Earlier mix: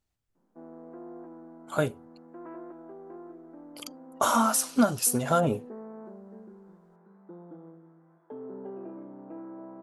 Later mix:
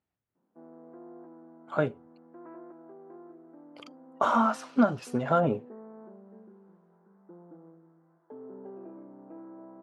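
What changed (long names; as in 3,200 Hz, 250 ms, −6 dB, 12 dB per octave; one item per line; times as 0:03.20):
background −4.0 dB
master: add band-pass filter 120–2,300 Hz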